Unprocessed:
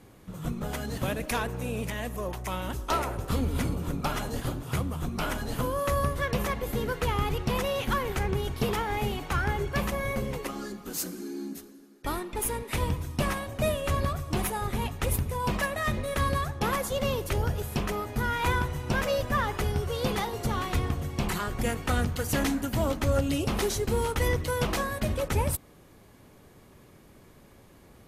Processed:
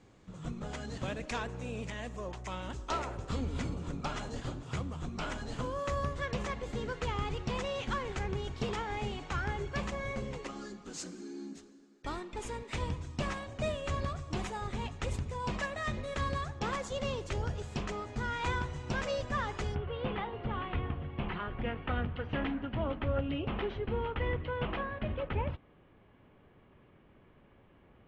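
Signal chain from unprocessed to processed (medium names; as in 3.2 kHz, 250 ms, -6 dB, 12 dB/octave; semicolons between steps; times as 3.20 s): elliptic low-pass 7.6 kHz, stop band 80 dB, from 19.74 s 3.1 kHz; trim -6 dB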